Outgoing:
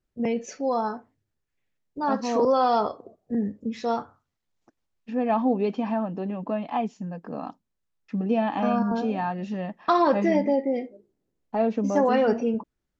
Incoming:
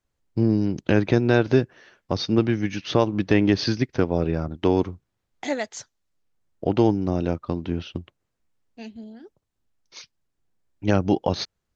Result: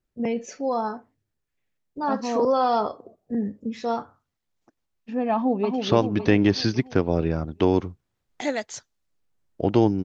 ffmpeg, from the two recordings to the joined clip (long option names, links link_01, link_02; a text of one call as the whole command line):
ffmpeg -i cue0.wav -i cue1.wav -filter_complex "[0:a]apad=whole_dur=10.04,atrim=end=10.04,atrim=end=5.782[link_01];[1:a]atrim=start=2.808:end=7.07[link_02];[link_01][link_02]acrossfade=duration=0.004:curve1=hsin:curve2=hsin,asplit=2[link_03][link_04];[link_04]afade=type=in:start_time=5.35:duration=0.01,afade=type=out:start_time=5.78:duration=0.01,aecho=0:1:280|560|840|1120|1400|1680|1960:0.595662|0.327614|0.180188|0.0991033|0.0545068|0.0299787|0.0164883[link_05];[link_03][link_05]amix=inputs=2:normalize=0" out.wav